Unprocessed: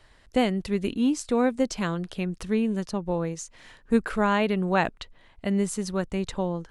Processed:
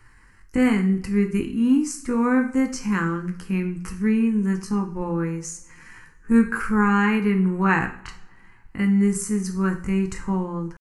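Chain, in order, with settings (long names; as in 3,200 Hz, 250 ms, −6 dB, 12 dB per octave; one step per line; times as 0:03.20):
phaser with its sweep stopped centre 1,500 Hz, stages 4
tempo change 0.62×
coupled-rooms reverb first 0.45 s, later 2.3 s, from −26 dB, DRR 4.5 dB
level +5.5 dB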